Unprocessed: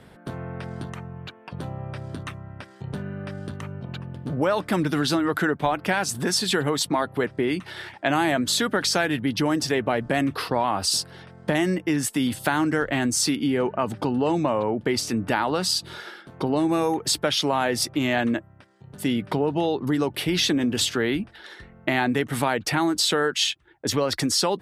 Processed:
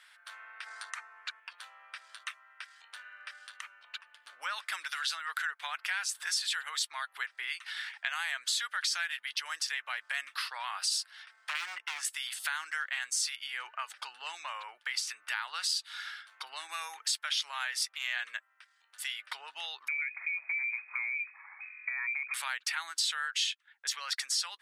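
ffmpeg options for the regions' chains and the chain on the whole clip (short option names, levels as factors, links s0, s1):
-filter_complex "[0:a]asettb=1/sr,asplit=3[s0][s1][s2];[s0]atrim=end=0.664[s3];[s1]atrim=start=0.66:end=1.4,asetpts=PTS-STARTPTS,afade=t=in:d=0.004:c=qsin,afade=t=out:st=0.736:d=0.004:c=qsin,lowpass=f=11000:w=0.5412,lowpass=f=11000:w=1.3066,equalizer=f=3000:w=2.4:g=-9,acontrast=67[s4];[s2]atrim=start=1.396[s5];[s3][s4]acrossfade=d=0.004:c1=hsin:c2=qsin[s6];[s6][s5]acrossfade=d=0.004:c1=qsin:c2=hsin,asettb=1/sr,asplit=3[s7][s8][s9];[s7]atrim=end=11.494[s10];[s8]atrim=start=11.49:end=12.05,asetpts=PTS-STARTPTS,afade=t=in:d=0.004:c=qsin,afade=t=out:st=0.556:d=0.004:c=qsin,lowpass=f=3600:p=1,lowshelf=f=330:g=9,aeval=exprs='0.178*(abs(mod(val(0)/0.178+3,4)-2)-1)':c=same[s11];[s9]atrim=start=12.046[s12];[s10][s11]acrossfade=d=0.004:c1=hsin:c2=qsin[s13];[s13][s12]acrossfade=d=0.004:c1=qsin:c2=hsin,asettb=1/sr,asplit=3[s14][s15][s16];[s14]atrim=end=19.884[s17];[s15]atrim=start=19.88:end=22.34,asetpts=PTS-STARTPTS,afade=t=in:d=0.004:c=qsin,afade=t=out:st=2.456:d=0.004:c=qsin,acompressor=threshold=0.0398:ratio=3:attack=3.2:release=140:knee=1:detection=peak,lowpass=f=2200:t=q:w=0.5098,lowpass=f=2200:t=q:w=0.6013,lowpass=f=2200:t=q:w=0.9,lowpass=f=2200:t=q:w=2.563,afreqshift=-2600[s18];[s16]atrim=start=22.336[s19];[s17][s18]acrossfade=d=0.004:c1=hsin:c2=qsin[s20];[s20][s19]acrossfade=d=0.004:c1=qsin:c2=hsin,highpass=f=1400:w=0.5412,highpass=f=1400:w=1.3066,acompressor=threshold=0.02:ratio=2,equalizer=f=13000:w=2.7:g=-9.5"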